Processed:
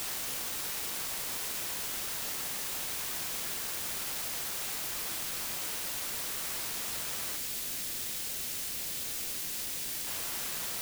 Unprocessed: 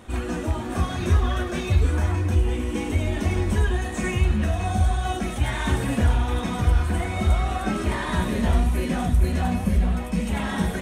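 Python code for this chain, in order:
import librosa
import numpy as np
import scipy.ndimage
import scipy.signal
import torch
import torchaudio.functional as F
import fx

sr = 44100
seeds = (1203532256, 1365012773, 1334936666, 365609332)

y = fx.schmitt(x, sr, flips_db=-30.0)
y = scipy.signal.sosfilt(scipy.signal.butter(4, 5500.0, 'lowpass', fs=sr, output='sos'), y)
y = np.diff(y, prepend=0.0)
y = fx.stiff_resonator(y, sr, f0_hz=230.0, decay_s=0.76, stiffness=0.03)
y = fx.quant_dither(y, sr, seeds[0], bits=6, dither='triangular')
y = fx.peak_eq(y, sr, hz=1000.0, db=-8.0, octaves=1.8, at=(7.36, 10.07))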